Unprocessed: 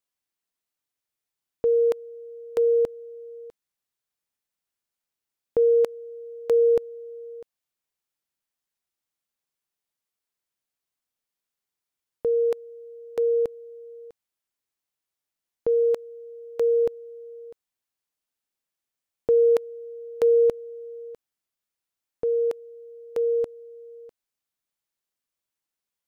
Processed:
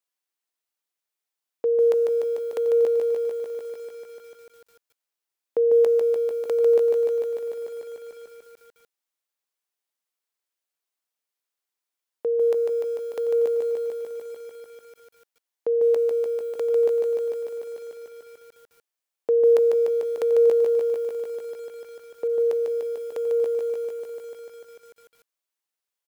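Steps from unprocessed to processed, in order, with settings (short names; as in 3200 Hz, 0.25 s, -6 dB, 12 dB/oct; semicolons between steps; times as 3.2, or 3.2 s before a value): HPF 350 Hz 12 dB/oct; echo 0.465 s -23 dB; lo-fi delay 0.148 s, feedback 80%, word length 9-bit, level -4.5 dB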